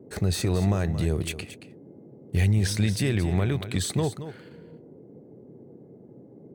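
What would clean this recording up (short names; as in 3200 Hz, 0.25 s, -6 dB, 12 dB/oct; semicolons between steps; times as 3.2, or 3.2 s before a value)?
noise print and reduce 22 dB; inverse comb 0.225 s -12 dB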